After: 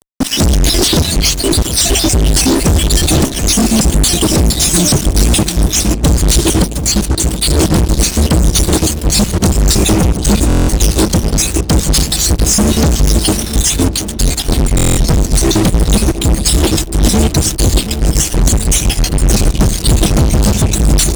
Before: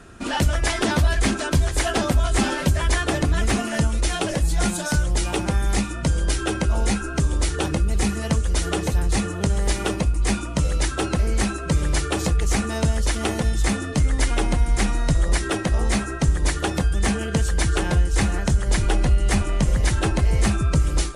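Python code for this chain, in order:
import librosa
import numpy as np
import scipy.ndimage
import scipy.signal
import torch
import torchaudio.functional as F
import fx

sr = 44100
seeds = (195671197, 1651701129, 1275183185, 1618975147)

p1 = fx.spec_dropout(x, sr, seeds[0], share_pct=49)
p2 = fx.rev_schroeder(p1, sr, rt60_s=1.6, comb_ms=26, drr_db=17.5)
p3 = np.sign(p2) * np.maximum(np.abs(p2) - 10.0 ** (-36.5 / 20.0), 0.0)
p4 = p2 + F.gain(torch.from_numpy(p3), -9.0).numpy()
p5 = scipy.signal.sosfilt(scipy.signal.cheby1(2, 1.0, [320.0, 4200.0], 'bandstop', fs=sr, output='sos'), p4)
p6 = fx.fuzz(p5, sr, gain_db=36.0, gate_db=-40.0)
p7 = p6 + fx.echo_filtered(p6, sr, ms=725, feedback_pct=69, hz=1200.0, wet_db=-10, dry=0)
p8 = fx.buffer_glitch(p7, sr, at_s=(10.48, 14.76), block=1024, repeats=8)
y = F.gain(torch.from_numpy(p8), 5.5).numpy()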